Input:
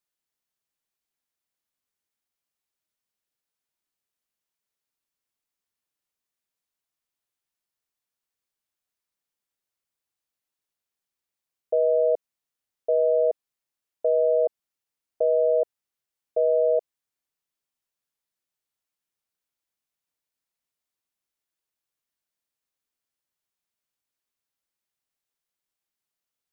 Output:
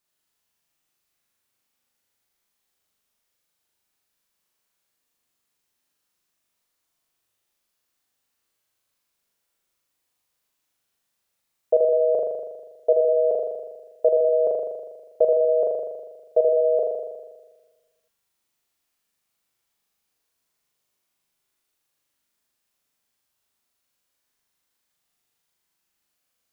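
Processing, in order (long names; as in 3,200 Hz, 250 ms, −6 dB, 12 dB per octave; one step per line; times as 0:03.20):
flutter between parallel walls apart 6.9 metres, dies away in 1.3 s
level +6 dB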